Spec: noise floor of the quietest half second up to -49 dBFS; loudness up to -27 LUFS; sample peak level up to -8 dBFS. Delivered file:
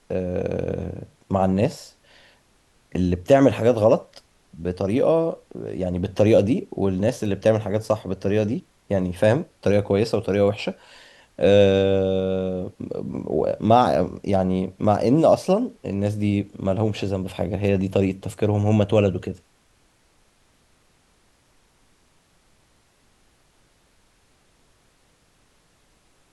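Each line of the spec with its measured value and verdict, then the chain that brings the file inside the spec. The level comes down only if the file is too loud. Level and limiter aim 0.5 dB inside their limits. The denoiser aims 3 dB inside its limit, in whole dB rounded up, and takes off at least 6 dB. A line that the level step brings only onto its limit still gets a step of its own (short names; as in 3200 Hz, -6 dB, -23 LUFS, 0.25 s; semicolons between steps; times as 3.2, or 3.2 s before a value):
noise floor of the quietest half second -61 dBFS: OK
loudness -21.5 LUFS: fail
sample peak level -3.0 dBFS: fail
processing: gain -6 dB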